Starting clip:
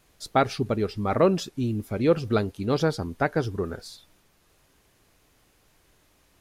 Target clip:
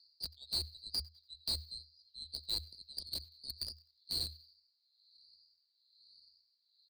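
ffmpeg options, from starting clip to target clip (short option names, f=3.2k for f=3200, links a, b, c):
-filter_complex "[0:a]afftfilt=real='re*pow(10,18/40*sin(2*PI*(0.75*log(max(b,1)*sr/1024/100)/log(2)-(1.2)*(pts-256)/sr)))':imag='im*pow(10,18/40*sin(2*PI*(0.75*log(max(b,1)*sr/1024/100)/log(2)-(1.2)*(pts-256)/sr)))':win_size=1024:overlap=0.75,asuperpass=centerf=4500:order=8:qfactor=5.9,asplit=2[a][b];[b]acrusher=bits=6:mix=0:aa=0.000001,volume=-7dB[c];[a][c]amix=inputs=2:normalize=0,acompressor=threshold=-45dB:ratio=2,aecho=1:1:88|176|264:0.0794|0.0302|0.0115,aeval=exprs='0.0237*(cos(1*acos(clip(val(0)/0.0237,-1,1)))-cos(1*PI/2))+0.00266*(cos(6*acos(clip(val(0)/0.0237,-1,1)))-cos(6*PI/2))':c=same,afreqshift=-79,atempo=0.93,volume=8dB"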